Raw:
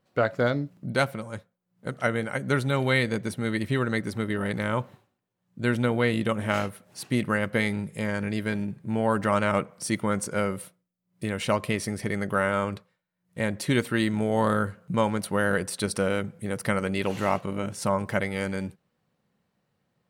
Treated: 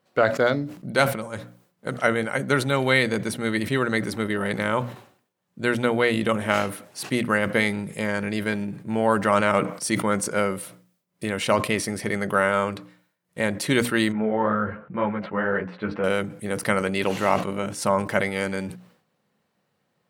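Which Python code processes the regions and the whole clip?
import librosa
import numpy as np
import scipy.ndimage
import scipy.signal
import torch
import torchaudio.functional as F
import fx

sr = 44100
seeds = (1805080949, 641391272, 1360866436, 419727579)

y = fx.chain(x, sr, fx.lowpass(hz=2300.0, slope=24),
    fx.ensemble(), at=(14.12, 16.04))
y = fx.highpass(y, sr, hz=210.0, slope=6)
y = fx.hum_notches(y, sr, base_hz=60, count=5)
y = fx.sustainer(y, sr, db_per_s=110.0)
y = y * librosa.db_to_amplitude(4.5)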